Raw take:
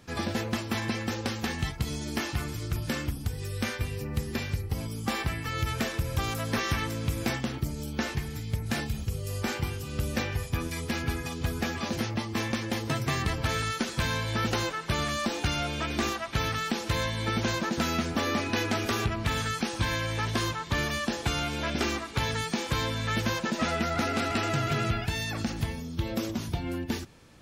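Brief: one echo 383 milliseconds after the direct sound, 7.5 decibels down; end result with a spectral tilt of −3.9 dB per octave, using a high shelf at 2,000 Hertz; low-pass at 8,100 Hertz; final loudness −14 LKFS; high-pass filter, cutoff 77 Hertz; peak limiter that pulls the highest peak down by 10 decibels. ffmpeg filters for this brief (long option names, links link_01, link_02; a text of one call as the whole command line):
ffmpeg -i in.wav -af "highpass=77,lowpass=8100,highshelf=frequency=2000:gain=5,alimiter=limit=-22.5dB:level=0:latency=1,aecho=1:1:383:0.422,volume=17.5dB" out.wav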